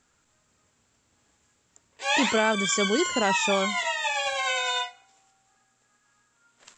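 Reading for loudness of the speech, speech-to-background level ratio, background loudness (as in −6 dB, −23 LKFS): −26.5 LKFS, 0.0 dB, −26.5 LKFS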